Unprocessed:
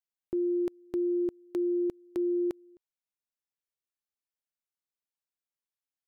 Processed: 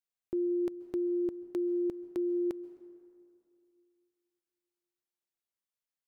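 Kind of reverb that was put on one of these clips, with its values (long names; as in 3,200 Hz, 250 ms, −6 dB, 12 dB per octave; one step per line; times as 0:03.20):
dense smooth reverb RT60 2.5 s, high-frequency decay 0.5×, pre-delay 120 ms, DRR 16 dB
level −2 dB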